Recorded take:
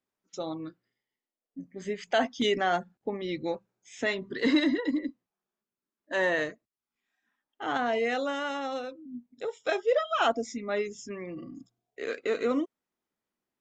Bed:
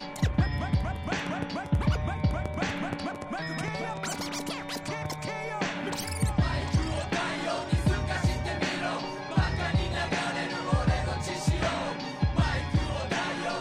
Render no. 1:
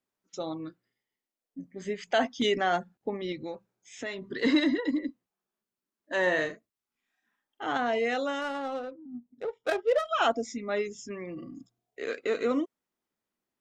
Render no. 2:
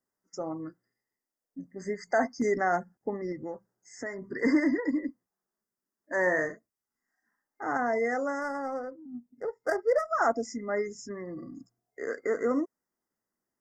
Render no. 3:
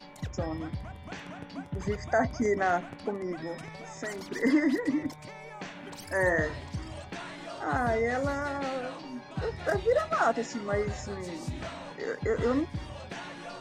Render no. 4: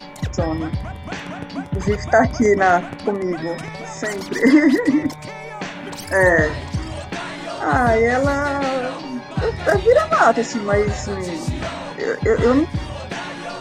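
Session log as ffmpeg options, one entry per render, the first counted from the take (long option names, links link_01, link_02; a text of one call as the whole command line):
ffmpeg -i in.wav -filter_complex "[0:a]asettb=1/sr,asplit=3[link_01][link_02][link_03];[link_01]atrim=end=3.324[link_04];[link_02]atrim=start=3.32:end=4.24,asetpts=PTS-STARTPTS,afade=type=in:duration=0.004:curve=qsin,afade=type=out:start_time=0.916:duration=0.004:curve=qsin,acompressor=threshold=-37dB:ratio=2:attack=3.2:release=140:knee=1:detection=peak[link_05];[link_03]atrim=start=4.236[link_06];[link_04][link_05]acrossfade=duration=0.004:curve1=hsin:curve2=qsin[link_07];[link_07][link_06]acrossfade=duration=0.004:curve1=qsin:curve2=hsin,asettb=1/sr,asplit=3[link_08][link_09][link_10];[link_08]atrim=end=6.224[link_11];[link_09]atrim=start=6.22:end=7.66,asetpts=PTS-STARTPTS,afade=type=in:duration=0.004:curve=qsin,afade=type=out:start_time=1.436:duration=0.004:curve=qsin,asplit=2[link_12][link_13];[link_13]adelay=44,volume=-8dB[link_14];[link_12][link_14]amix=inputs=2:normalize=0,atrim=end_sample=63504[link_15];[link_10]atrim=start=7.656[link_16];[link_11][link_15]acrossfade=duration=0.004:curve1=hsin:curve2=qsin[link_17];[link_17][link_16]acrossfade=duration=0.004:curve1=qsin:curve2=hsin,asettb=1/sr,asplit=3[link_18][link_19][link_20];[link_18]atrim=end=8.414[link_21];[link_19]atrim=start=8.41:end=10.09,asetpts=PTS-STARTPTS,afade=type=in:duration=0.004:curve=qsin,afade=type=out:start_time=1.676:duration=0.004:curve=qsin,adynamicsmooth=sensitivity=5.5:basefreq=1100[link_22];[link_20]atrim=start=10.086[link_23];[link_21][link_22]acrossfade=duration=0.004:curve1=hsin:curve2=qsin[link_24];[link_24][link_23]acrossfade=duration=0.004:curve1=qsin:curve2=hsin" out.wav
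ffmpeg -i in.wav -af "afftfilt=real='re*(1-between(b*sr/4096,2100,4600))':imag='im*(1-between(b*sr/4096,2100,4600))':win_size=4096:overlap=0.75" out.wav
ffmpeg -i in.wav -i bed.wav -filter_complex "[1:a]volume=-10.5dB[link_01];[0:a][link_01]amix=inputs=2:normalize=0" out.wav
ffmpeg -i in.wav -af "volume=12dB,alimiter=limit=-2dB:level=0:latency=1" out.wav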